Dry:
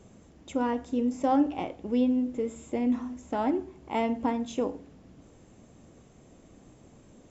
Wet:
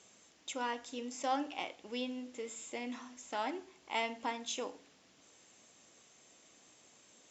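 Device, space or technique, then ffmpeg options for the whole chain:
piezo pickup straight into a mixer: -af "lowpass=5300,aderivative,volume=3.98"

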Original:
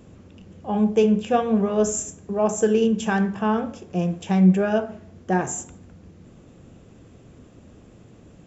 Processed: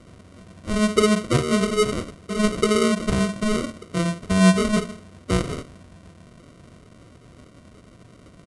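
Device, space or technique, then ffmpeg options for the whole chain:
crushed at another speed: -af "asetrate=88200,aresample=44100,acrusher=samples=26:mix=1:aa=0.000001,asetrate=22050,aresample=44100"

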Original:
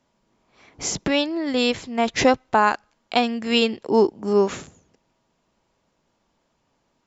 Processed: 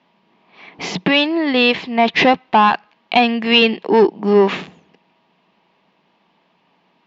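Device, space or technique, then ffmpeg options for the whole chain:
overdrive pedal into a guitar cabinet: -filter_complex "[0:a]asplit=2[s0][s1];[s1]highpass=f=720:p=1,volume=7.08,asoftclip=type=tanh:threshold=0.631[s2];[s0][s2]amix=inputs=2:normalize=0,lowpass=f=3000:p=1,volume=0.501,highpass=93,equalizer=f=110:t=q:w=4:g=-8,equalizer=f=180:t=q:w=4:g=10,equalizer=f=550:t=q:w=4:g=-6,equalizer=f=1400:t=q:w=4:g=-8,equalizer=f=2700:t=q:w=4:g=3,lowpass=f=4200:w=0.5412,lowpass=f=4200:w=1.3066,volume=1.41"

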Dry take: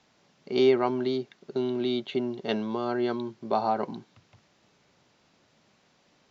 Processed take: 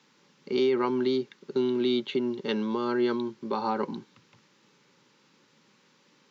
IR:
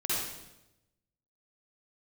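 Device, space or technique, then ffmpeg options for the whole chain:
PA system with an anti-feedback notch: -af "highpass=f=140:w=0.5412,highpass=f=140:w=1.3066,asuperstop=centerf=680:order=4:qfactor=2.7,alimiter=limit=0.106:level=0:latency=1:release=102,volume=1.33"

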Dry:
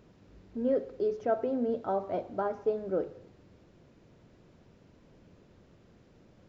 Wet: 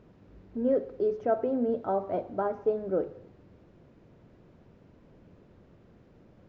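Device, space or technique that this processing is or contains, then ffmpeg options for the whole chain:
through cloth: -af "highshelf=f=3600:g=-13.5,volume=1.33"

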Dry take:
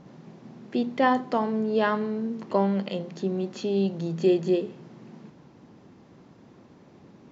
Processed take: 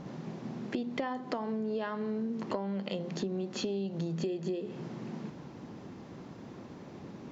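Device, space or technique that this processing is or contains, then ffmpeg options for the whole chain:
serial compression, leveller first: -af "acompressor=threshold=0.0398:ratio=2.5,acompressor=threshold=0.0141:ratio=6,volume=1.88"

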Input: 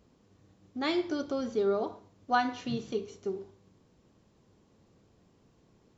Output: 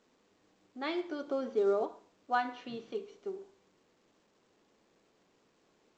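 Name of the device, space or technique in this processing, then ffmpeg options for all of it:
telephone: -filter_complex "[0:a]asettb=1/sr,asplit=3[s0][s1][s2];[s0]atrim=end=1.264[s3];[s1]atrim=start=1.26:end=1.86,asetpts=PTS-STARTPTS,afade=t=in:d=0.004:c=qsin,afade=t=out:st=0.596:d=0.004:c=qsin,equalizer=f=400:w=0.43:g=4.5[s4];[s2]atrim=start=1.856[s5];[s3][s4]acrossfade=d=0.004:c1=hsin:c2=qsin[s6];[s6][s5]acrossfade=d=0.004:c1=qsin:c2=hsin,highpass=320,lowpass=3300,volume=0.668" -ar 16000 -c:a pcm_alaw

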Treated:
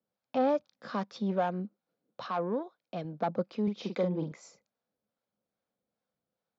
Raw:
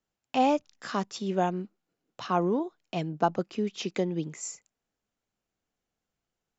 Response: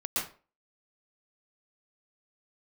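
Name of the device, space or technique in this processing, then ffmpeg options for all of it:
guitar amplifier with harmonic tremolo: -filter_complex "[0:a]asettb=1/sr,asplit=3[s0][s1][s2];[s0]atrim=end=0.974[s3];[s1]atrim=start=0.97:end=1.6,asetpts=PTS-STARTPTS,afade=t=in:d=0.004:c=qsin,afade=t=out:st=0.626:d=0.004:c=qsin,equalizer=f=1900:t=o:w=1:g=4[s4];[s2]atrim=start=1.596[s5];[s3][s4]acrossfade=d=0.004:c1=hsin:c2=qsin[s6];[s6][s5]acrossfade=d=0.004:c1=qsin:c2=hsin,acrossover=split=580[s7][s8];[s7]aeval=exprs='val(0)*(1-0.5/2+0.5/2*cos(2*PI*2.4*n/s))':c=same[s9];[s8]aeval=exprs='val(0)*(1-0.5/2-0.5/2*cos(2*PI*2.4*n/s))':c=same[s10];[s9][s10]amix=inputs=2:normalize=0,asoftclip=type=tanh:threshold=0.0631,highpass=110,equalizer=f=210:t=q:w=4:g=5,equalizer=f=360:t=q:w=4:g=-4,equalizer=f=530:t=q:w=4:g=9,equalizer=f=1900:t=q:w=4:g=-5,equalizer=f=2800:t=q:w=4:g=-9,lowpass=f=4500:w=0.5412,lowpass=f=4500:w=1.3066,asettb=1/sr,asplit=3[s11][s12][s13];[s11]atrim=end=2.294[s14];[s12]atrim=start=2.29:end=3.05,asetpts=PTS-STARTPTS,afade=t=in:d=0.004:c=qsin,afade=t=out:st=0.756:d=0.004:c=qsin,lowshelf=f=420:g=-6.5[s15];[s13]atrim=start=3.046[s16];[s14][s15]acrossfade=d=0.004:c1=hsin:c2=qsin[s17];[s17][s16]acrossfade=d=0.004:c1=qsin:c2=hsin,asettb=1/sr,asplit=3[s18][s19][s20];[s18]atrim=end=3.634[s21];[s19]atrim=start=3.63:end=4.32,asetpts=PTS-STARTPTS,afade=t=in:d=0.004:c=qsin,afade=t=out:st=0.686:d=0.004:c=qsin,asplit=2[s22][s23];[s23]adelay=44,volume=0.562[s24];[s22][s24]amix=inputs=2:normalize=0,atrim=end_sample=30429[s25];[s20]atrim=start=4.316[s26];[s21][s25]acrossfade=d=0.004:c1=hsin:c2=qsin[s27];[s27][s26]acrossfade=d=0.004:c1=qsin:c2=hsin"

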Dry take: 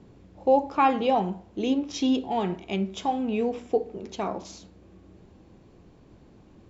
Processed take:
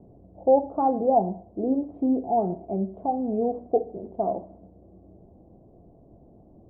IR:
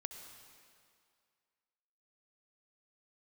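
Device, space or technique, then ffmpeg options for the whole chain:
under water: -af "lowpass=f=720:w=0.5412,lowpass=f=720:w=1.3066,equalizer=f=680:t=o:w=0.37:g=11"

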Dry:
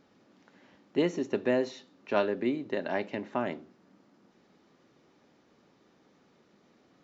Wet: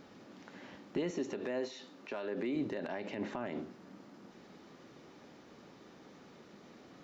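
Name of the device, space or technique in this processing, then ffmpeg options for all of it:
de-esser from a sidechain: -filter_complex "[0:a]asplit=2[s0][s1];[s1]highpass=f=5000:p=1,apad=whole_len=310454[s2];[s0][s2]sidechaincompress=threshold=0.00126:ratio=5:attack=0.78:release=56,asettb=1/sr,asplit=3[s3][s4][s5];[s3]atrim=end=1.104[s6];[s4]atrim=start=1.1:end=2.56,asetpts=PTS-STARTPTS,afade=t=in:d=0.004:c=qsin,afade=t=out:st=1.456:d=0.004:c=qsin,highpass=f=240:p=1[s7];[s5]atrim=start=2.556[s8];[s6][s7]acrossfade=d=0.004:c1=hsin:c2=qsin[s9];[s9][s8]acrossfade=d=0.004:c1=qsin:c2=hsin,volume=2.51"

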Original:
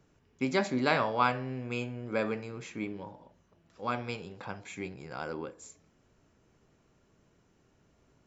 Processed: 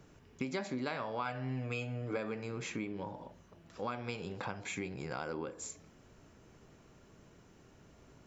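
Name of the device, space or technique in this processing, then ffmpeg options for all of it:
serial compression, peaks first: -filter_complex "[0:a]acompressor=threshold=0.0112:ratio=4,acompressor=threshold=0.00398:ratio=1.5,asettb=1/sr,asplit=3[s0][s1][s2];[s0]atrim=end=1.254[s3];[s1]atrim=start=1.25:end=2.17,asetpts=PTS-STARTPTS,afade=t=in:d=0.004:c=qsin,afade=t=out:st=0.916:d=0.004:c=qsin,aecho=1:1:6.7:0.69,atrim=end_sample=40572[s4];[s2]atrim=start=2.166[s5];[s3][s4]acrossfade=d=0.004:c1=hsin:c2=qsin[s6];[s6][s5]acrossfade=d=0.004:c1=qsin:c2=hsin,volume=2.24"

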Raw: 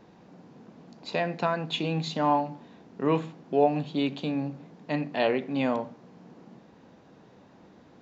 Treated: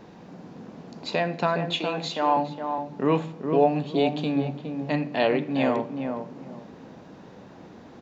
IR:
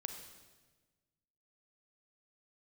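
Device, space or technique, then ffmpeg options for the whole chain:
ducked reverb: -filter_complex "[0:a]asplit=3[s0][s1][s2];[1:a]atrim=start_sample=2205[s3];[s1][s3]afir=irnorm=-1:irlink=0[s4];[s2]apad=whole_len=353603[s5];[s4][s5]sidechaincompress=threshold=0.0112:ratio=8:attack=16:release=653,volume=1.26[s6];[s0][s6]amix=inputs=2:normalize=0,asettb=1/sr,asplit=3[s7][s8][s9];[s7]atrim=end=1.704[s10];[s8]atrim=start=1.7:end=2.37,asetpts=PTS-STARTPTS,afade=t=in:d=0.004:c=qsin,afade=t=out:st=0.666:d=0.004:c=qsin,highpass=400[s11];[s9]atrim=start=2.366[s12];[s10][s11]acrossfade=d=0.004:c1=hsin:c2=qsin[s13];[s13][s12]acrossfade=d=0.004:c1=qsin:c2=hsin,asplit=2[s14][s15];[s15]adelay=413,lowpass=f=1200:p=1,volume=0.531,asplit=2[s16][s17];[s17]adelay=413,lowpass=f=1200:p=1,volume=0.24,asplit=2[s18][s19];[s19]adelay=413,lowpass=f=1200:p=1,volume=0.24[s20];[s14][s16][s18][s20]amix=inputs=4:normalize=0,volume=1.19"

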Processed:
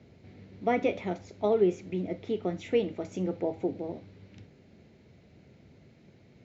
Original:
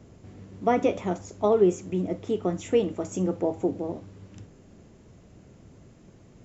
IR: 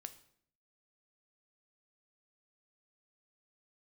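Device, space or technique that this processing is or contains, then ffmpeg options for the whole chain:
car door speaker: -af "lowpass=5200,highpass=110,equalizer=f=110:t=q:w=4:g=-5,equalizer=f=180:t=q:w=4:g=-3,equalizer=f=300:t=q:w=4:g=-3,equalizer=f=1100:t=q:w=4:g=-8,equalizer=f=2200:t=q:w=4:g=8,equalizer=f=4100:t=q:w=4:g=8,lowpass=f=6500:w=0.5412,lowpass=f=6500:w=1.3066,equalizer=f=70:w=0.5:g=6,volume=0.631"

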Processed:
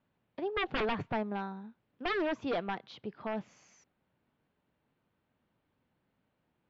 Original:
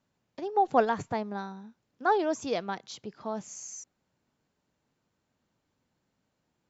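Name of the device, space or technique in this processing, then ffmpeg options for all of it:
synthesiser wavefolder: -af "aeval=exprs='0.0501*(abs(mod(val(0)/0.0501+3,4)-2)-1)':c=same,lowpass=f=3400:w=0.5412,lowpass=f=3400:w=1.3066"

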